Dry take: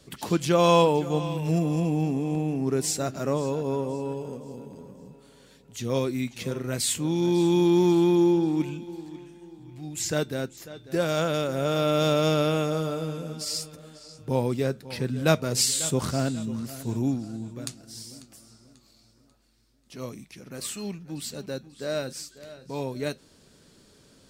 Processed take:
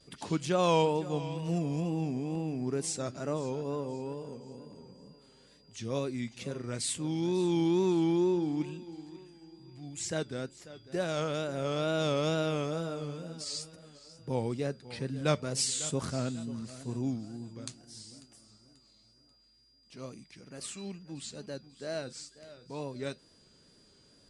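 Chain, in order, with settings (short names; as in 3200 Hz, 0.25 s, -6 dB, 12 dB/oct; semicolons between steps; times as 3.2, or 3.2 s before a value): downsampling 22050 Hz; vibrato 2.2 Hz 100 cents; whine 4800 Hz -57 dBFS; gain -7 dB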